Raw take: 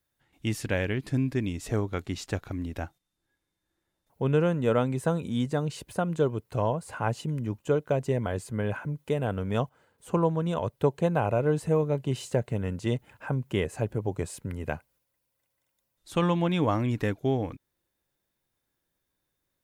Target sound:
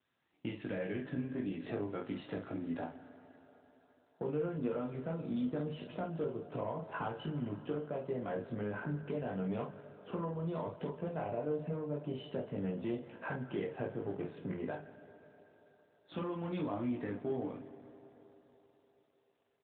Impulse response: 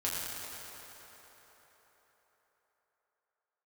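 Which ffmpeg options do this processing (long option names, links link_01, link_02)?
-filter_complex "[0:a]highpass=frequency=140:width=0.5412,highpass=frequency=140:width=1.3066,agate=range=-10dB:threshold=-52dB:ratio=16:detection=peak,highshelf=frequency=2800:gain=-9,acompressor=threshold=-35dB:ratio=8,asoftclip=type=tanh:threshold=-29dB,asplit=2[link_01][link_02];[link_02]adelay=20,volume=-4dB[link_03];[link_01][link_03]amix=inputs=2:normalize=0,aecho=1:1:17|48:0.631|0.531,asplit=2[link_04][link_05];[1:a]atrim=start_sample=2205,lowshelf=frequency=70:gain=-6[link_06];[link_05][link_06]afir=irnorm=-1:irlink=0,volume=-14.5dB[link_07];[link_04][link_07]amix=inputs=2:normalize=0,volume=-1.5dB" -ar 8000 -c:a libopencore_amrnb -b:a 12200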